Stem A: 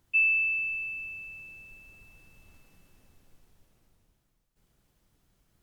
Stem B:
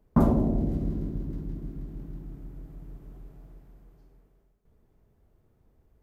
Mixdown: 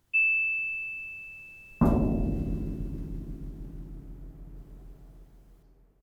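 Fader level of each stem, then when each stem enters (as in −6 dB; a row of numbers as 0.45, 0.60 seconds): −0.5, −2.0 decibels; 0.00, 1.65 seconds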